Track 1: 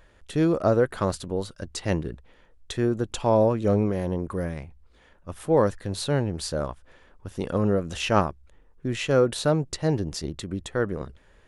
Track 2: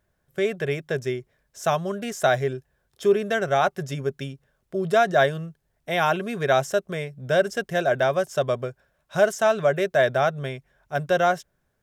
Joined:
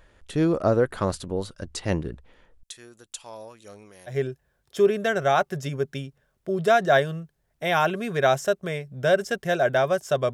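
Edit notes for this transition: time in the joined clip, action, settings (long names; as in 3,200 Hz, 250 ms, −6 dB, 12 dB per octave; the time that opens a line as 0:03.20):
track 1
0:02.63–0:04.18: first-order pre-emphasis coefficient 0.97
0:04.12: continue with track 2 from 0:02.38, crossfade 0.12 s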